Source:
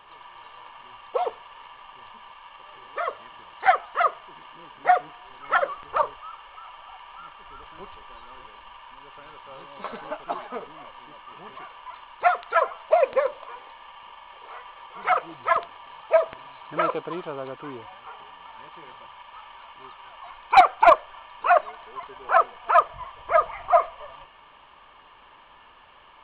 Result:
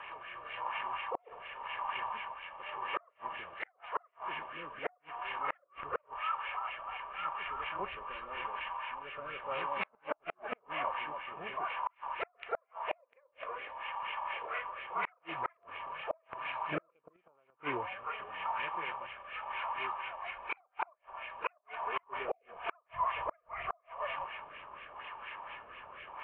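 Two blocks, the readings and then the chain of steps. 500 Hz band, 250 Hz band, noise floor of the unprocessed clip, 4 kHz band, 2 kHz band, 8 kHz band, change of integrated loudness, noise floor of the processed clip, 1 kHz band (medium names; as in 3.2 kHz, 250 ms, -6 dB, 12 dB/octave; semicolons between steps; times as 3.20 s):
-17.5 dB, -7.5 dB, -52 dBFS, -5.0 dB, -8.5 dB, no reading, -16.0 dB, -74 dBFS, -13.0 dB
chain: high-pass 76 Hz 6 dB/octave; spectral replace 22.09–22.59 s, 860–2000 Hz both; fifteen-band graphic EQ 250 Hz -4 dB, 630 Hz +4 dB, 2.5 kHz +9 dB; compression 10:1, threshold -26 dBFS, peak gain reduction 20.5 dB; LFO low-pass sine 4.2 Hz 930–2300 Hz; pre-echo 33 ms -13.5 dB; rotary cabinet horn 0.9 Hz; inverted gate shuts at -24 dBFS, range -40 dB; trim +2.5 dB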